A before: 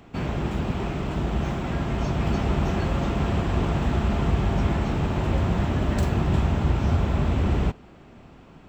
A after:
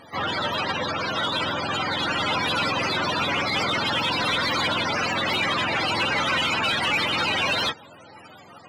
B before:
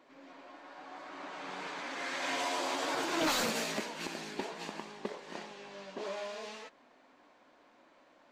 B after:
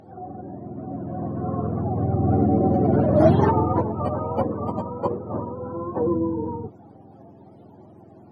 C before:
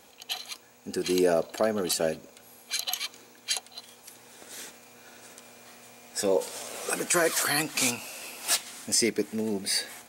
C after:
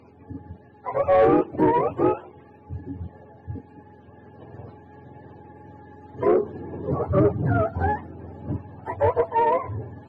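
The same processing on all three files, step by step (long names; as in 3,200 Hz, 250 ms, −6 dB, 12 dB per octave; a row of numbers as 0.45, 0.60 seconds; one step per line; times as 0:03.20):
frequency axis turned over on the octave scale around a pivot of 450 Hz
mid-hump overdrive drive 17 dB, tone 3,700 Hz, clips at −12 dBFS
loudness normalisation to −23 LKFS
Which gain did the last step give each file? −1.5, +13.0, +4.5 decibels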